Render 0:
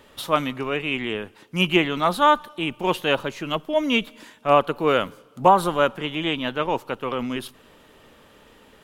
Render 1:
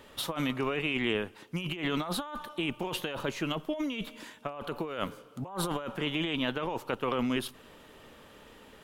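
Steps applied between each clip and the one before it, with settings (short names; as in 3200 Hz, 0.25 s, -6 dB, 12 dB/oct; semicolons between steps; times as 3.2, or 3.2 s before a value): negative-ratio compressor -27 dBFS, ratio -1; gain -6 dB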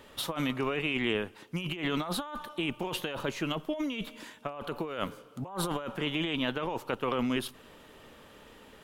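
nothing audible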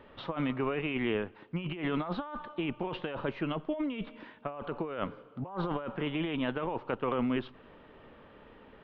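Gaussian blur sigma 3.1 samples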